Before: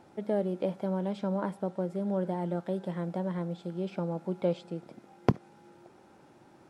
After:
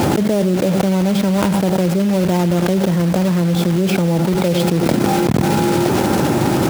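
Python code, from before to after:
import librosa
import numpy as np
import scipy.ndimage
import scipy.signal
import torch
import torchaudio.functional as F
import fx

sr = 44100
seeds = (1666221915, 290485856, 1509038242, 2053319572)

y = fx.block_float(x, sr, bits=3)
y = scipy.signal.sosfilt(scipy.signal.butter(2, 69.0, 'highpass', fs=sr, output='sos'), y)
y = fx.low_shelf(y, sr, hz=310.0, db=9.5)
y = y + 10.0 ** (-20.5 / 20.0) * np.pad(y, (int(98 * sr / 1000.0), 0))[:len(y)]
y = fx.env_flatten(y, sr, amount_pct=100)
y = F.gain(torch.from_numpy(y), -2.0).numpy()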